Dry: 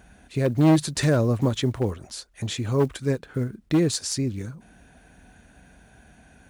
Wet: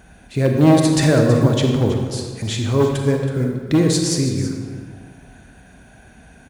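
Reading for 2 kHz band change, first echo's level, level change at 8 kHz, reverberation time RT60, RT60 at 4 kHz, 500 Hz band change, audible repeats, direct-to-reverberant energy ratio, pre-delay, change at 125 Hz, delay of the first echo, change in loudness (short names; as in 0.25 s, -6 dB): +6.5 dB, -13.0 dB, +6.0 dB, 1.5 s, 1.1 s, +7.5 dB, 1, 2.0 dB, 34 ms, +7.0 dB, 0.324 s, +6.5 dB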